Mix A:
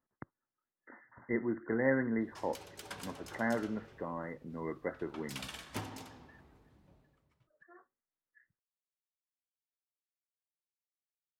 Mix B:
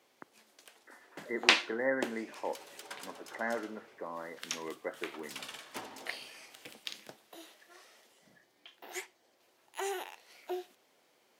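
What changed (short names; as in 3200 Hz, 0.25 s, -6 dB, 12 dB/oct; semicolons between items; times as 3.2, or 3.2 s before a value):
first sound: unmuted; master: add HPF 360 Hz 12 dB/oct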